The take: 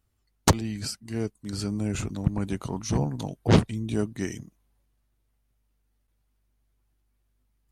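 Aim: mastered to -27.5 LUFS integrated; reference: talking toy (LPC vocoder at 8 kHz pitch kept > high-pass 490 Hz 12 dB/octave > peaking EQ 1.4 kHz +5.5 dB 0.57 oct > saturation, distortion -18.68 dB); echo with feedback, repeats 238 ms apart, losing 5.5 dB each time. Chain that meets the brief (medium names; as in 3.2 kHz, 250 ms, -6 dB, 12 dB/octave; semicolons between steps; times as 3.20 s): feedback delay 238 ms, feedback 53%, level -5.5 dB; LPC vocoder at 8 kHz pitch kept; high-pass 490 Hz 12 dB/octave; peaking EQ 1.4 kHz +5.5 dB 0.57 oct; saturation -13.5 dBFS; trim +8 dB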